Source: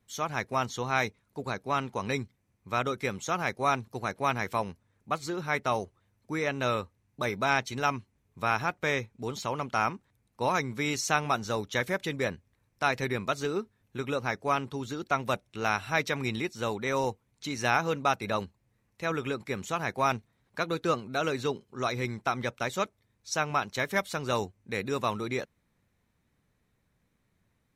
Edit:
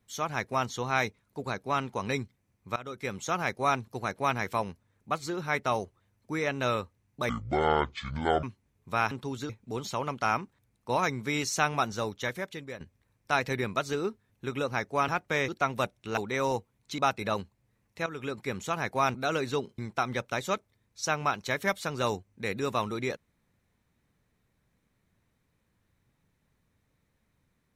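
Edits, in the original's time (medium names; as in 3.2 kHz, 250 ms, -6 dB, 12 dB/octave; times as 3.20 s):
2.76–3.22 s: fade in, from -19 dB
7.29–7.93 s: speed 56%
8.61–9.01 s: swap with 14.60–14.98 s
11.39–12.32 s: fade out, to -13.5 dB
15.67–16.70 s: delete
17.51–18.01 s: delete
19.09–19.42 s: fade in, from -12.5 dB
20.17–21.06 s: delete
21.70–22.07 s: delete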